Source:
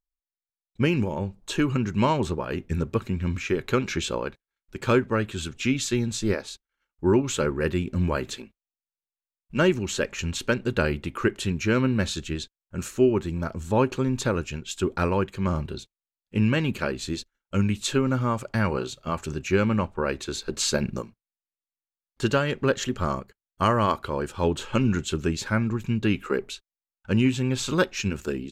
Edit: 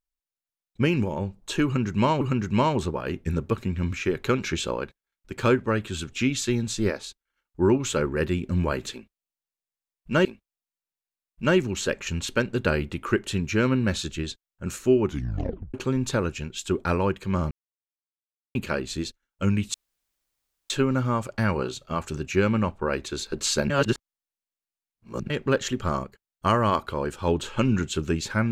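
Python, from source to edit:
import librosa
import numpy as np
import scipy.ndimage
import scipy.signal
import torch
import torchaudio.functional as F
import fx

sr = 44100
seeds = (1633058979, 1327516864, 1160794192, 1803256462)

y = fx.edit(x, sr, fx.repeat(start_s=1.65, length_s=0.56, count=2),
    fx.repeat(start_s=8.37, length_s=1.32, count=2),
    fx.tape_stop(start_s=13.17, length_s=0.69),
    fx.silence(start_s=15.63, length_s=1.04),
    fx.insert_room_tone(at_s=17.86, length_s=0.96),
    fx.reverse_span(start_s=20.86, length_s=1.6), tone=tone)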